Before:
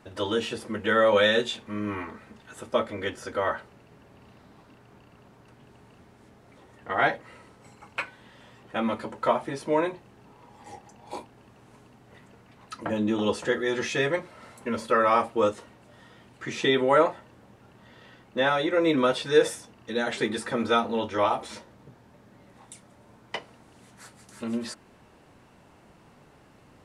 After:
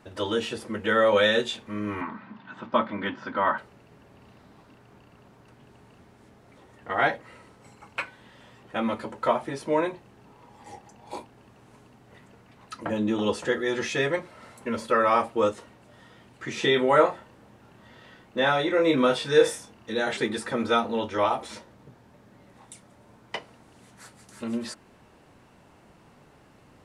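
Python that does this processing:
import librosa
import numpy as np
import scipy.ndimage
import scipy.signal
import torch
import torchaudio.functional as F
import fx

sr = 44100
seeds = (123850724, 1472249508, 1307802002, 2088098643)

y = fx.cabinet(x, sr, low_hz=110.0, low_slope=24, high_hz=4000.0, hz=(190.0, 270.0, 450.0, 1000.0, 1500.0), db=(9, 6, -9, 10, 4), at=(2.01, 3.58))
y = fx.doubler(y, sr, ms=28.0, db=-5.5, at=(16.54, 20.17))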